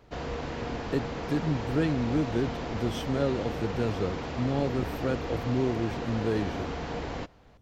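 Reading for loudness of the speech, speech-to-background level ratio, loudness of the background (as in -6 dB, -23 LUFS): -31.0 LUFS, 4.5 dB, -35.5 LUFS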